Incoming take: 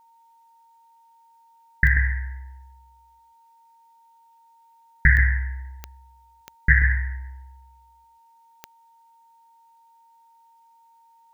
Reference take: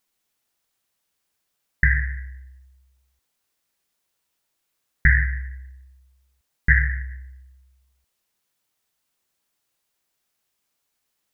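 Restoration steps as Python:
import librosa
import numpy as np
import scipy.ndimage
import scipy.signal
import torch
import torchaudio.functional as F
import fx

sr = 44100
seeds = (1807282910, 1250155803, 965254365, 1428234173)

y = fx.fix_declick_ar(x, sr, threshold=10.0)
y = fx.notch(y, sr, hz=920.0, q=30.0)
y = fx.fix_echo_inverse(y, sr, delay_ms=136, level_db=-7.5)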